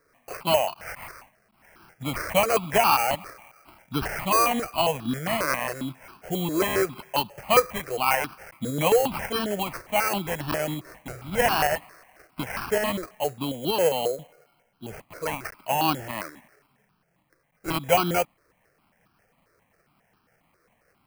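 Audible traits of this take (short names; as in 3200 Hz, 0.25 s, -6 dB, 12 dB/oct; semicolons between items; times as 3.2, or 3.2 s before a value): tremolo saw up 5.4 Hz, depth 35%; aliases and images of a low sample rate 3600 Hz, jitter 0%; notches that jump at a steady rate 7.4 Hz 820–2000 Hz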